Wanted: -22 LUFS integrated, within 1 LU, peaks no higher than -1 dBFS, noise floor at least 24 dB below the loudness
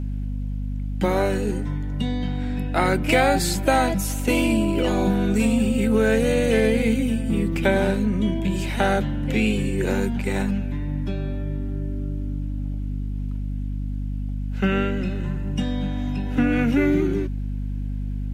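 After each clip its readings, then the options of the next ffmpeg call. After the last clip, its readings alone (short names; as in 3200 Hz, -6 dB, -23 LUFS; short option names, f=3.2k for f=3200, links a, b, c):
hum 50 Hz; harmonics up to 250 Hz; hum level -24 dBFS; loudness -23.5 LUFS; peak -5.0 dBFS; loudness target -22.0 LUFS
-> -af "bandreject=f=50:t=h:w=6,bandreject=f=100:t=h:w=6,bandreject=f=150:t=h:w=6,bandreject=f=200:t=h:w=6,bandreject=f=250:t=h:w=6"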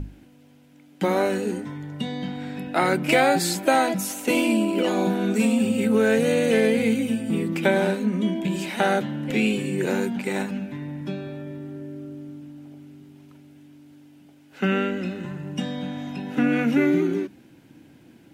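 hum none; loudness -23.5 LUFS; peak -6.0 dBFS; loudness target -22.0 LUFS
-> -af "volume=1.5dB"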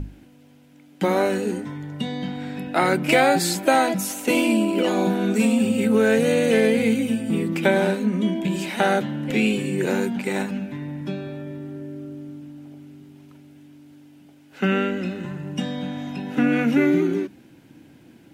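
loudness -22.0 LUFS; peak -4.5 dBFS; noise floor -51 dBFS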